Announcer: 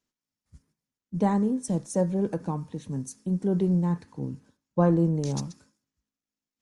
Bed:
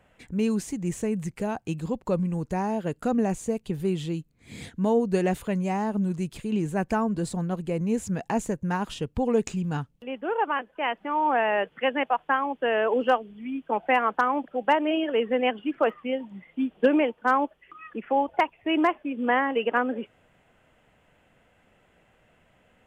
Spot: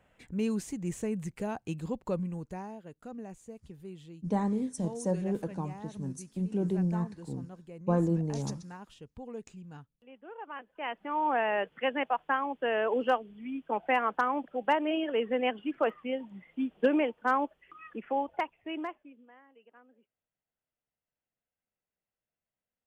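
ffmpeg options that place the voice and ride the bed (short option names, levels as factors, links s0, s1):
-filter_complex "[0:a]adelay=3100,volume=0.531[s0];[1:a]volume=2.51,afade=t=out:st=2.03:d=0.77:silence=0.223872,afade=t=in:st=10.43:d=0.76:silence=0.211349,afade=t=out:st=17.88:d=1.38:silence=0.0334965[s1];[s0][s1]amix=inputs=2:normalize=0"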